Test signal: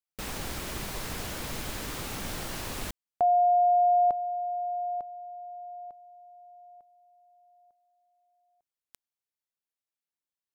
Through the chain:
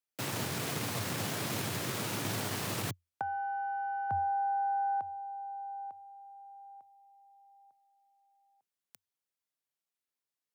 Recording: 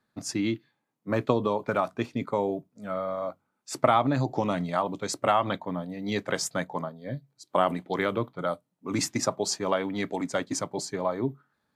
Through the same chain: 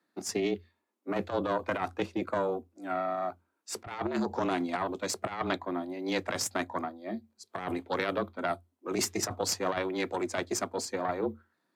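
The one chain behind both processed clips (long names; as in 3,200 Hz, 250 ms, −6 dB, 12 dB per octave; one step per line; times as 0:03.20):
harmonic generator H 4 −11 dB, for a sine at −6.5 dBFS
frequency shifter +85 Hz
compressor whose output falls as the input rises −26 dBFS, ratio −0.5
level −3 dB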